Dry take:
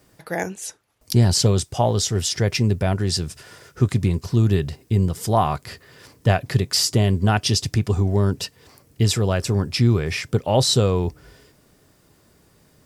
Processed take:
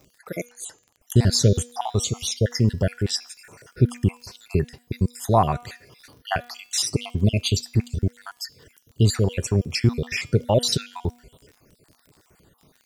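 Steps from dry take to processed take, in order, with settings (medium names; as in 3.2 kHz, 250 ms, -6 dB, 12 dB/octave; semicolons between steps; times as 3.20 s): random holes in the spectrogram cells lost 58%; de-hum 241.5 Hz, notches 30; crackle 35 per s -41 dBFS; trim +1 dB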